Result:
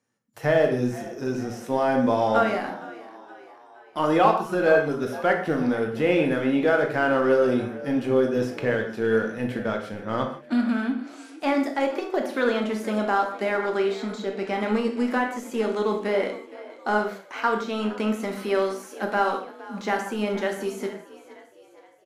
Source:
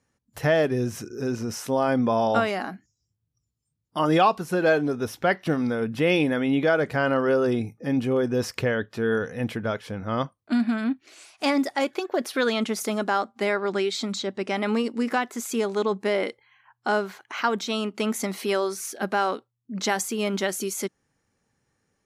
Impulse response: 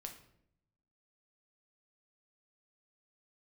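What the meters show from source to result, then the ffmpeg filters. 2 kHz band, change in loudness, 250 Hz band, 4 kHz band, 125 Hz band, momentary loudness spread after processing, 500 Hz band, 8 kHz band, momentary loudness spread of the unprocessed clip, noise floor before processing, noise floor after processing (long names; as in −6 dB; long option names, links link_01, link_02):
+0.5 dB, +0.5 dB, +0.5 dB, −5.0 dB, −2.5 dB, 10 LU, +1.5 dB, below −10 dB, 8 LU, −79 dBFS, −50 dBFS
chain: -filter_complex "[0:a]highpass=160,acrossover=split=2500[link_01][link_02];[link_02]acompressor=threshold=-41dB:ratio=4:attack=1:release=60[link_03];[link_01][link_03]amix=inputs=2:normalize=0,asplit=2[link_04][link_05];[link_05]aeval=exprs='sgn(val(0))*max(abs(val(0))-0.0188,0)':channel_layout=same,volume=-5dB[link_06];[link_04][link_06]amix=inputs=2:normalize=0,asplit=5[link_07][link_08][link_09][link_10][link_11];[link_08]adelay=466,afreqshift=49,volume=-18dB[link_12];[link_09]adelay=932,afreqshift=98,volume=-23.7dB[link_13];[link_10]adelay=1398,afreqshift=147,volume=-29.4dB[link_14];[link_11]adelay=1864,afreqshift=196,volume=-35dB[link_15];[link_07][link_12][link_13][link_14][link_15]amix=inputs=5:normalize=0[link_16];[1:a]atrim=start_sample=2205,afade=type=out:start_time=0.18:duration=0.01,atrim=end_sample=8379,asetrate=32193,aresample=44100[link_17];[link_16][link_17]afir=irnorm=-1:irlink=0"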